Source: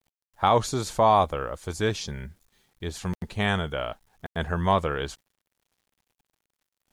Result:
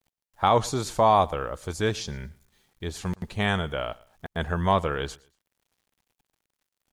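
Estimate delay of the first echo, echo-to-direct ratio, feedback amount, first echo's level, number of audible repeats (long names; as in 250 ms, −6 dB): 115 ms, −22.5 dB, 30%, −23.0 dB, 2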